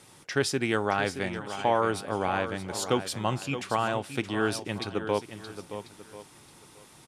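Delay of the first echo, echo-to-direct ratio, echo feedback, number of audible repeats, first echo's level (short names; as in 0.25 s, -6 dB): 0.622 s, -9.5 dB, no steady repeat, 3, -10.5 dB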